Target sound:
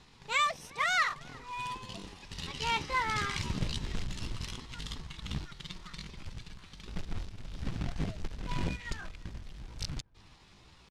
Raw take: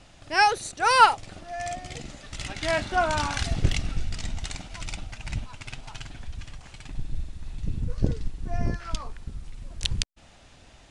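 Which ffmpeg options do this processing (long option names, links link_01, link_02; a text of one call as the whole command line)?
ffmpeg -i in.wav -filter_complex "[0:a]asoftclip=type=tanh:threshold=-8dB,alimiter=limit=-15dB:level=0:latency=1:release=266,asetrate=62367,aresample=44100,atempo=0.707107,equalizer=frequency=180:width=1.3:gain=3,acrusher=bits=3:mode=log:mix=0:aa=0.000001,lowpass=4100,highshelf=frequency=2200:gain=9,asplit=2[link_01][link_02];[link_02]adelay=355,lowpass=frequency=1800:poles=1,volume=-22.5dB,asplit=2[link_03][link_04];[link_04]adelay=355,lowpass=frequency=1800:poles=1,volume=0.51,asplit=2[link_05][link_06];[link_06]adelay=355,lowpass=frequency=1800:poles=1,volume=0.51[link_07];[link_03][link_05][link_07]amix=inputs=3:normalize=0[link_08];[link_01][link_08]amix=inputs=2:normalize=0,volume=-7.5dB" out.wav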